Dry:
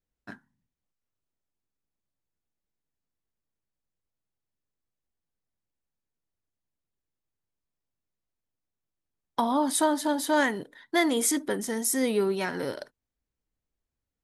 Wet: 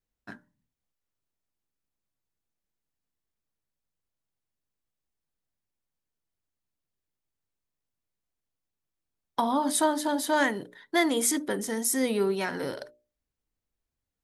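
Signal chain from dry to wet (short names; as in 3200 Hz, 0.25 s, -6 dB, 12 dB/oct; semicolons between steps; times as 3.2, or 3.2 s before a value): notches 60/120/180/240/300/360/420/480/540/600 Hz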